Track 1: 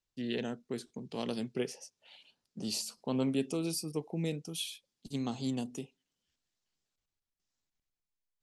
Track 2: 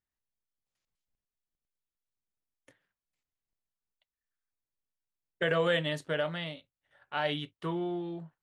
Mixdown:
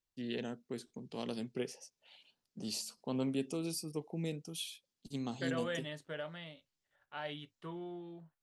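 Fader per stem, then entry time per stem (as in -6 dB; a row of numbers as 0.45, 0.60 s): -4.0, -11.0 dB; 0.00, 0.00 s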